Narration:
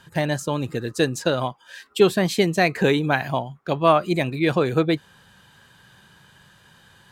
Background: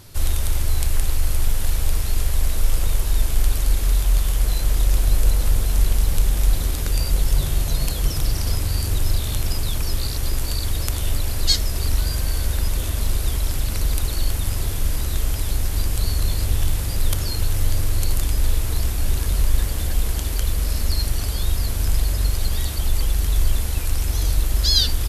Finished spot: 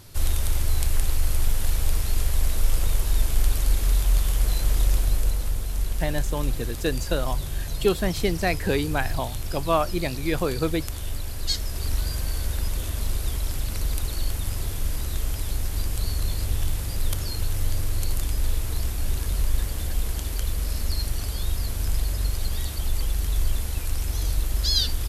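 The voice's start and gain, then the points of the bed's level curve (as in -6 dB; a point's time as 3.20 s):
5.85 s, -5.5 dB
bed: 4.85 s -2.5 dB
5.56 s -8.5 dB
11.39 s -8.5 dB
11.95 s -5 dB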